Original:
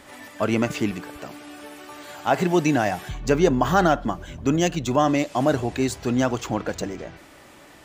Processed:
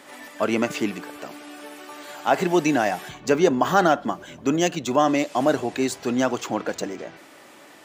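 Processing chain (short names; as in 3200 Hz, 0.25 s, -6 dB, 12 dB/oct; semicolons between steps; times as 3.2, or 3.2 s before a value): HPF 220 Hz 12 dB/oct; gain +1 dB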